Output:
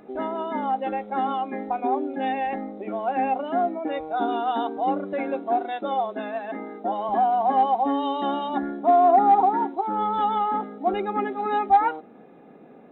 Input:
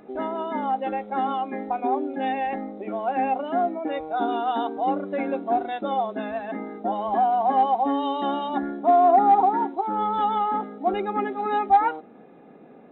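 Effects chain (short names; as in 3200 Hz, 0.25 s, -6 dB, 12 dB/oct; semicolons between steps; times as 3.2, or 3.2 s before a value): 5.13–7.09 HPF 240 Hz 12 dB/oct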